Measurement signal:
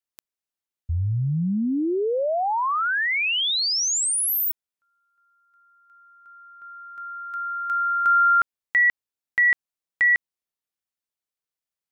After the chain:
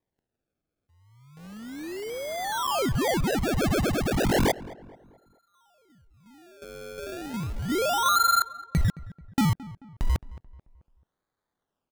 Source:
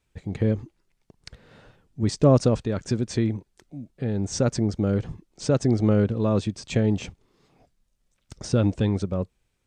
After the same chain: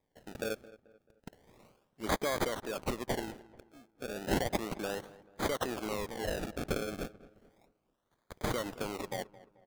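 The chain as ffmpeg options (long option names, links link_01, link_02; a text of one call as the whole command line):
ffmpeg -i in.wav -filter_complex "[0:a]highpass=560,acrossover=split=1100|3400[link_01][link_02][link_03];[link_01]acompressor=threshold=-32dB:ratio=6[link_04];[link_02]acompressor=threshold=-20dB:ratio=6[link_05];[link_03]acompressor=threshold=-31dB:ratio=6[link_06];[link_04][link_05][link_06]amix=inputs=3:normalize=0,asplit=2[link_07][link_08];[link_08]acrusher=bits=6:mix=0:aa=0.000001,volume=-6dB[link_09];[link_07][link_09]amix=inputs=2:normalize=0,aexciter=amount=3.2:drive=1.5:freq=4500,acrusher=samples=31:mix=1:aa=0.000001:lfo=1:lforange=31:lforate=0.33,asplit=2[link_10][link_11];[link_11]adelay=218,lowpass=frequency=1900:poles=1,volume=-18dB,asplit=2[link_12][link_13];[link_13]adelay=218,lowpass=frequency=1900:poles=1,volume=0.43,asplit=2[link_14][link_15];[link_15]adelay=218,lowpass=frequency=1900:poles=1,volume=0.43,asplit=2[link_16][link_17];[link_17]adelay=218,lowpass=frequency=1900:poles=1,volume=0.43[link_18];[link_12][link_14][link_16][link_18]amix=inputs=4:normalize=0[link_19];[link_10][link_19]amix=inputs=2:normalize=0,volume=-5dB" out.wav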